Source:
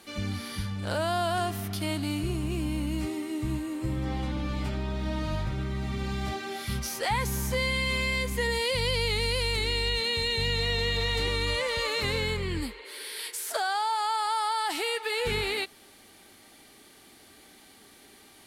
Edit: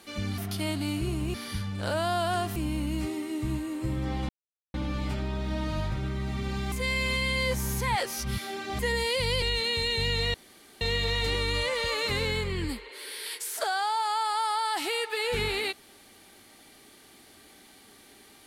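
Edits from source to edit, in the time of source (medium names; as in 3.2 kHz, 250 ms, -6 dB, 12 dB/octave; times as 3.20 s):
1.60–2.56 s: move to 0.38 s
4.29 s: insert silence 0.45 s
6.27–8.34 s: reverse
8.97–9.82 s: delete
10.74 s: insert room tone 0.47 s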